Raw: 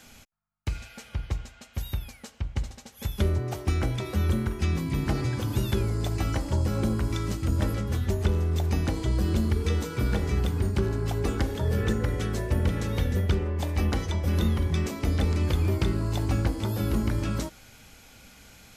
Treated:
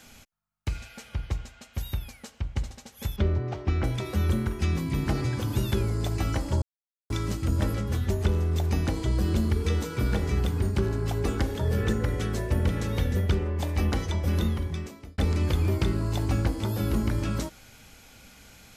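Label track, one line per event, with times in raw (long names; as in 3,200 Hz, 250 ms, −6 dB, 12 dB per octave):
3.160000	3.840000	high-frequency loss of the air 170 metres
6.620000	7.100000	silence
14.300000	15.180000	fade out linear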